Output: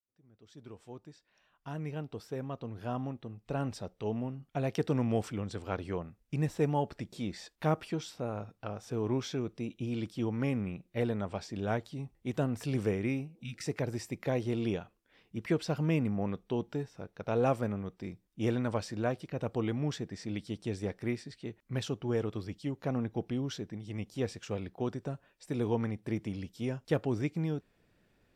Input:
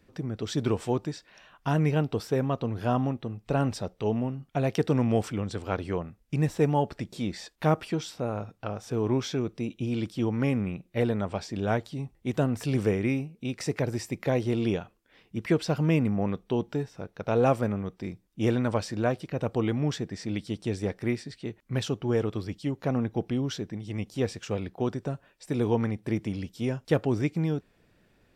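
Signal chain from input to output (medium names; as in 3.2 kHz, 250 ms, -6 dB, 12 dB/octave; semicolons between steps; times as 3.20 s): fade-in on the opening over 4.86 s; spectral replace 13.37–13.62 s, 240–1300 Hz before; trim -5.5 dB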